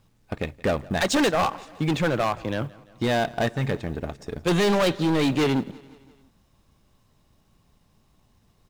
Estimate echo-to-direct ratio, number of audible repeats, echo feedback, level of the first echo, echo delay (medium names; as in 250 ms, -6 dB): -21.0 dB, 3, 58%, -22.5 dB, 171 ms